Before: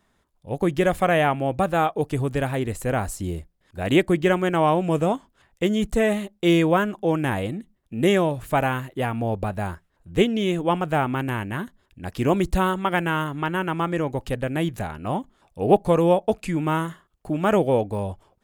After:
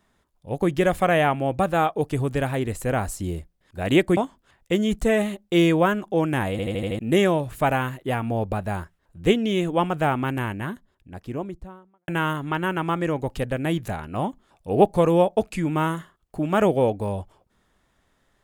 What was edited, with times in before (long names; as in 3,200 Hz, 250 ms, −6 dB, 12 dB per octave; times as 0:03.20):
0:04.17–0:05.08: remove
0:07.42: stutter in place 0.08 s, 6 plays
0:11.21–0:12.99: fade out and dull